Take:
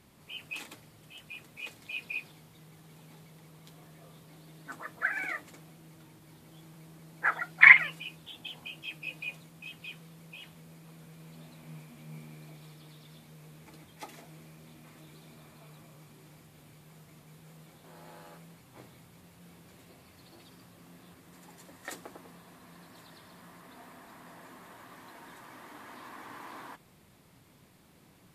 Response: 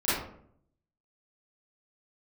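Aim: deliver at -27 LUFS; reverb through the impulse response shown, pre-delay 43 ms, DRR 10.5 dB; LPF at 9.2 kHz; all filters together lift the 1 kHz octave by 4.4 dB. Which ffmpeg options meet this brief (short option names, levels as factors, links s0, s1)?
-filter_complex "[0:a]lowpass=9200,equalizer=f=1000:t=o:g=5.5,asplit=2[s0][s1];[1:a]atrim=start_sample=2205,adelay=43[s2];[s1][s2]afir=irnorm=-1:irlink=0,volume=0.075[s3];[s0][s3]amix=inputs=2:normalize=0,volume=0.75"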